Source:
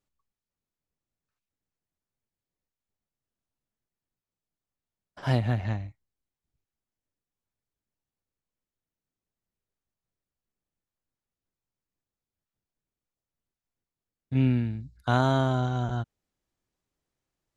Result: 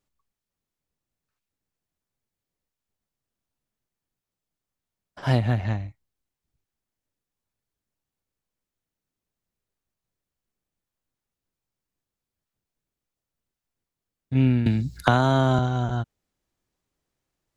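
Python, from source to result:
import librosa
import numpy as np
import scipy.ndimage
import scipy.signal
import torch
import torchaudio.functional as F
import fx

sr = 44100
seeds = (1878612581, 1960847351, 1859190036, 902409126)

y = fx.band_squash(x, sr, depth_pct=100, at=(14.66, 15.59))
y = y * librosa.db_to_amplitude(3.5)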